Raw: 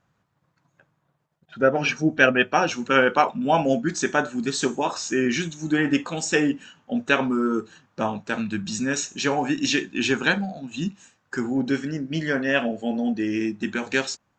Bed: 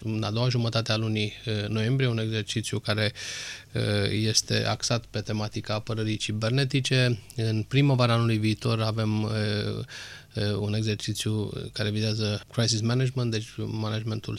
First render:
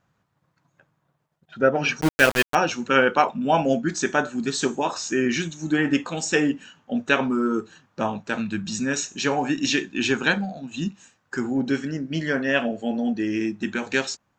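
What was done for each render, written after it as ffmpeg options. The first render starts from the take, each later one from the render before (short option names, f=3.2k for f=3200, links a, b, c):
-filter_complex "[0:a]asettb=1/sr,asplit=3[a][b][c];[a]atrim=end=2.014[d];[b]atrim=start=2.01:end=2.55,asetpts=PTS-STARTPTS,afade=t=in:d=0.004:c=qsin,afade=t=out:st=0.536:d=0.004:c=qsin,aeval=exprs='val(0)*gte(abs(val(0)),0.112)':c=same[e];[c]atrim=start=2.546[f];[d][e]acrossfade=d=0.004:c1=hsin:c2=qsin[g];[g][f]acrossfade=d=0.004:c1=qsin:c2=hsin"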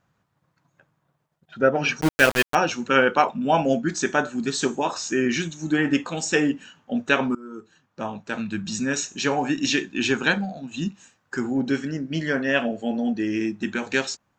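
-filter_complex "[0:a]asplit=2[a][b];[a]atrim=end=7.35,asetpts=PTS-STARTPTS,afade=t=out:st=7.346:d=0.004:c=hsin:silence=0.0794328[c];[b]atrim=start=7.35,asetpts=PTS-STARTPTS,afade=t=in:d=1.35:silence=0.0794328[d];[c][d]concat=n=2:v=0:a=1"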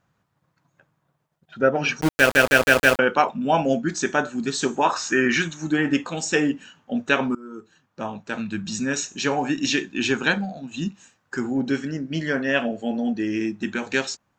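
-filter_complex "[0:a]asettb=1/sr,asplit=3[a][b][c];[a]atrim=end=4.764[d];[b]atrim=start=4.76:end=5.68,asetpts=PTS-STARTPTS,afade=t=in:d=0.004:c=qsin,afade=t=out:st=0.916:d=0.004:c=qsin,equalizer=f=1.4k:t=o:w=1.6:g=10[e];[c]atrim=start=5.676[f];[d][e]acrossfade=d=0.004:c1=hsin:c2=qsin[g];[g][f]acrossfade=d=0.004:c1=qsin:c2=hsin,asplit=6[h][i][j][k][l][m];[h]atrim=end=2.352[n];[i]atrim=start=2.188:end=2.352[o];[j]atrim=start=2.188:end=2.352[p];[k]atrim=start=2.188:end=2.352[q];[l]atrim=start=2.188:end=2.352[r];[m]atrim=start=2.988[s];[n][o]acrossfade=d=0.004:c1=hsin:c2=hsin[t];[t][p]acrossfade=d=0.004:c1=hsin:c2=hsin[u];[u][q]acrossfade=d=0.004:c1=hsin:c2=hsin[v];[v][r]acrossfade=d=0.004:c1=hsin:c2=hsin[w];[w][s]acrossfade=d=0.004:c1=hsin:c2=hsin"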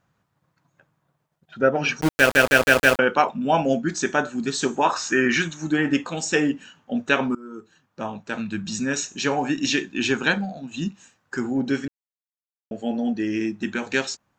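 -filter_complex "[0:a]asplit=3[a][b][c];[a]atrim=end=11.88,asetpts=PTS-STARTPTS,afade=t=out:st=11.876:d=0.004:c=hsin[d];[b]atrim=start=11.88:end=12.71,asetpts=PTS-STARTPTS,volume=0[e];[c]atrim=start=12.71,asetpts=PTS-STARTPTS,afade=t=in:d=0.004:c=hsin[f];[d][e][f]concat=n=3:v=0:a=1"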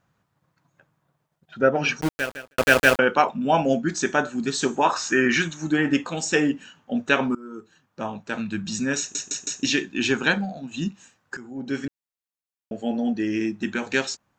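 -filter_complex "[0:a]asplit=7[a][b][c][d][e][f][g];[a]atrim=end=2.58,asetpts=PTS-STARTPTS,afade=t=out:st=1.95:d=0.63:c=qua[h];[b]atrim=start=2.58:end=9.152,asetpts=PTS-STARTPTS,afade=t=in:d=0.004:c=hsin[i];[c]atrim=start=8.988:end=9.152[j];[d]atrim=start=8.988:end=9.152[k];[e]atrim=start=8.988:end=9.152[l];[f]atrim=start=9.628:end=11.37,asetpts=PTS-STARTPTS,afade=t=out:st=1.738:d=0.004:c=hsin:silence=0.158489[m];[g]atrim=start=11.37,asetpts=PTS-STARTPTS,afade=t=in:d=0.48:c=qua:silence=0.158489[n];[h][i]concat=n=2:v=0:a=1[o];[o][j]acrossfade=d=0.004:c1=hsin:c2=hsin[p];[p][k]acrossfade=d=0.004:c1=hsin:c2=hsin[q];[q][l]acrossfade=d=0.004:c1=hsin:c2=hsin[r];[m][n]concat=n=2:v=0:a=1[s];[r][s]acrossfade=d=0.004:c1=hsin:c2=hsin"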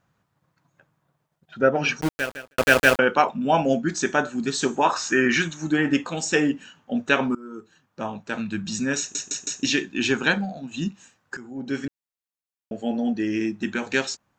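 -af anull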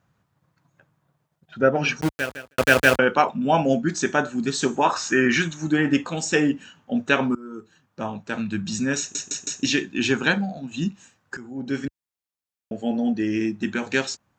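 -af "highpass=55,lowshelf=f=130:g=7"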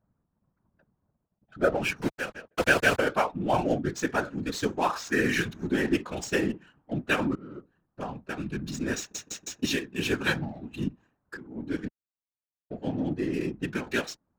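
-af "adynamicsmooth=sensitivity=7.5:basefreq=1k,afftfilt=real='hypot(re,im)*cos(2*PI*random(0))':imag='hypot(re,im)*sin(2*PI*random(1))':win_size=512:overlap=0.75"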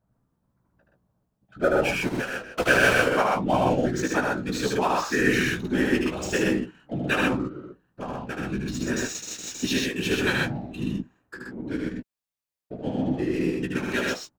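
-filter_complex "[0:a]asplit=2[a][b];[b]adelay=16,volume=-7.5dB[c];[a][c]amix=inputs=2:normalize=0,aecho=1:1:75.8|125.4:0.708|0.794"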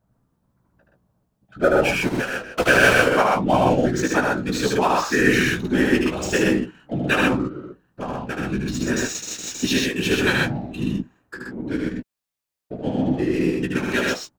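-af "volume=4.5dB,alimiter=limit=-2dB:level=0:latency=1"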